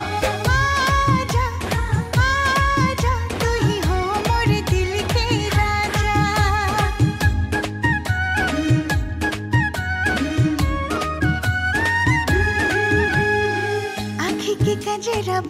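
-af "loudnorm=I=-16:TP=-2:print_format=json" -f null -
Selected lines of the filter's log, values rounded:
"input_i" : "-19.7",
"input_tp" : "-6.7",
"input_lra" : "1.5",
"input_thresh" : "-29.7",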